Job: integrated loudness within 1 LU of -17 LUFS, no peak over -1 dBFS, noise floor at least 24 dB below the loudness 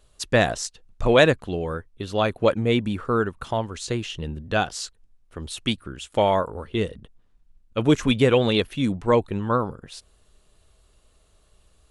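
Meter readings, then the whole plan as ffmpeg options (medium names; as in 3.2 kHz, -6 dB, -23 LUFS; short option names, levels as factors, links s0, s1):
loudness -23.5 LUFS; peak level -3.5 dBFS; loudness target -17.0 LUFS
-> -af "volume=2.11,alimiter=limit=0.891:level=0:latency=1"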